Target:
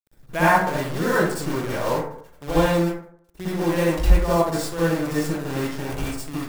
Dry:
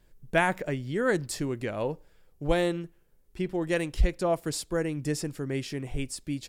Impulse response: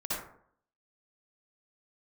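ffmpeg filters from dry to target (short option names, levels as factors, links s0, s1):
-filter_complex "[0:a]adynamicequalizer=threshold=0.00501:dfrequency=1000:dqfactor=2.3:tfrequency=1000:tqfactor=2.3:attack=5:release=100:ratio=0.375:range=4:mode=boostabove:tftype=bell,acrusher=bits=6:dc=4:mix=0:aa=0.000001[s0];[1:a]atrim=start_sample=2205[s1];[s0][s1]afir=irnorm=-1:irlink=0"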